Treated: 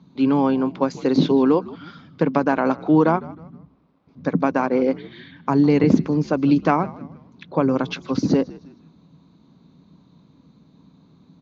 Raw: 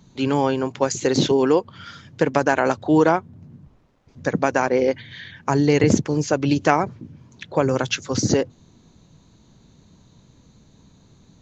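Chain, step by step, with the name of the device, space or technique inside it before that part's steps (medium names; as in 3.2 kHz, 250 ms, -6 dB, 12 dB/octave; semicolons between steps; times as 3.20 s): frequency-shifting delay pedal into a guitar cabinet (frequency-shifting echo 156 ms, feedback 39%, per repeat -81 Hz, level -19.5 dB; cabinet simulation 92–4300 Hz, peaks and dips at 110 Hz -7 dB, 170 Hz +8 dB, 270 Hz +8 dB, 1.1 kHz +5 dB, 1.8 kHz -6 dB, 3 kHz -5 dB); trim -2.5 dB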